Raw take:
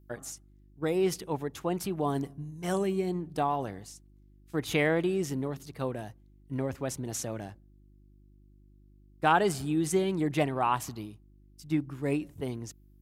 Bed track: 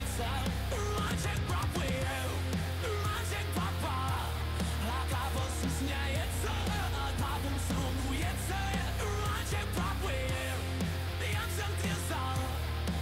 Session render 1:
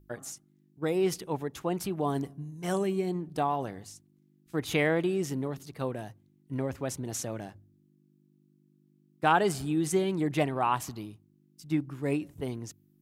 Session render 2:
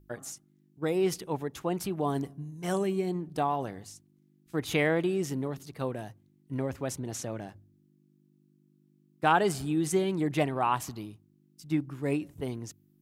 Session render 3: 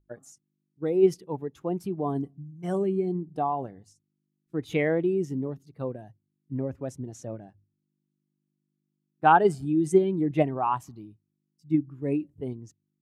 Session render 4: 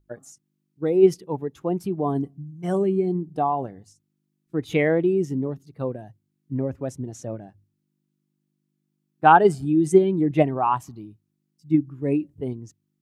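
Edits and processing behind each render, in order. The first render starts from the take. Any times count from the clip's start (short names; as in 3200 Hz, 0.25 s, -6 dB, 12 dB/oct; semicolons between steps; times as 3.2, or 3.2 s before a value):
de-hum 50 Hz, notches 2
6.98–7.47 high shelf 8400 Hz -> 5300 Hz -6.5 dB
in parallel at -2.5 dB: level quantiser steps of 12 dB; on the sum: spectral expander 1.5:1
gain +4.5 dB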